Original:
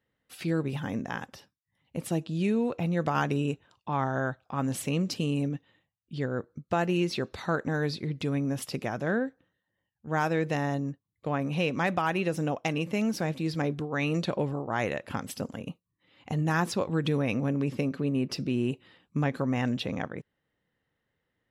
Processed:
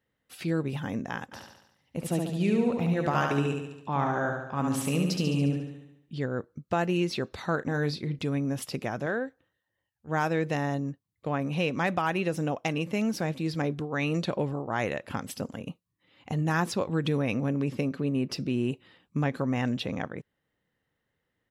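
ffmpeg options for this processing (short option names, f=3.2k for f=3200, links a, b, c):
-filter_complex "[0:a]asplit=3[a][b][c];[a]afade=t=out:st=1.31:d=0.02[d];[b]aecho=1:1:71|142|213|284|355|426|497|568:0.631|0.353|0.198|0.111|0.0621|0.0347|0.0195|0.0109,afade=t=in:st=1.31:d=0.02,afade=t=out:st=6.14:d=0.02[e];[c]afade=t=in:st=6.14:d=0.02[f];[d][e][f]amix=inputs=3:normalize=0,asettb=1/sr,asplit=3[g][h][i];[g]atrim=end=7.554[j];[h]atrim=start=7.55:end=8.19,asetpts=PTS-STARTPTS,afade=t=in:d=0.004:c=qsin,afade=t=out:st=0.636:d=0.004:c=qsin,asplit=2[k][l];[l]adelay=34,volume=-12dB[m];[k][m]amix=inputs=2:normalize=0,atrim=end_sample=28224[n];[i]atrim=start=8.186[o];[j][n]acrossfade=d=0.004:c1=hsin:c2=qsin[p];[p][o]acrossfade=d=0.004:c1=qsin:c2=hsin,asettb=1/sr,asplit=3[q][r][s];[q]atrim=end=9.064[t];[r]atrim=start=9.06:end=10.09,asetpts=PTS-STARTPTS,afade=t=in:d=0.004:c=qsin,afade=t=out:st=1.026:d=0.004:c=qsin,equalizer=f=200:w=1.5:g=-8.5[u];[s]atrim=start=10.086[v];[t][u]acrossfade=d=0.004:c1=hsin:c2=qsin[w];[w][v]acrossfade=d=0.004:c1=qsin:c2=hsin"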